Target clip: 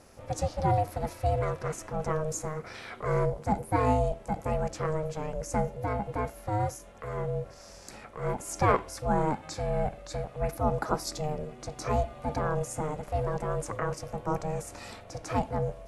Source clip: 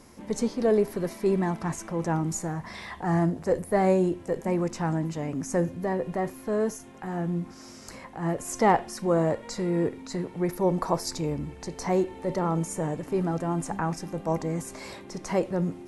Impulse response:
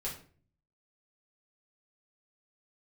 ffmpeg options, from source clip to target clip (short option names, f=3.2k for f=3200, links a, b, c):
-af "aeval=exprs='val(0)*sin(2*PI*310*n/s)':c=same"